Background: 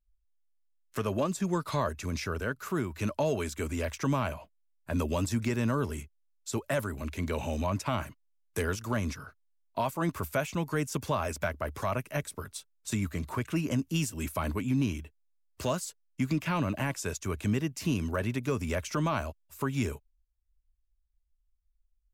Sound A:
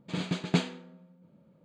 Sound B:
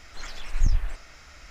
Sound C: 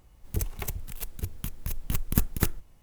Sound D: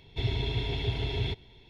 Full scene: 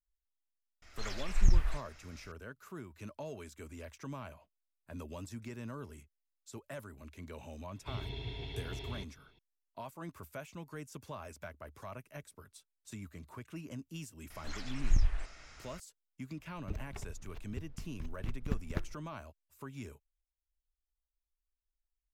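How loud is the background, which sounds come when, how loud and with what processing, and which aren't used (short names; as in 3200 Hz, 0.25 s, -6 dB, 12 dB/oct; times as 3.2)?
background -15 dB
0.82 add B -3 dB + gate -42 dBFS, range -7 dB
7.7 add D -11 dB
14.3 add B -5.5 dB + downsampling 22050 Hz
16.34 add C -9.5 dB + air absorption 230 m
not used: A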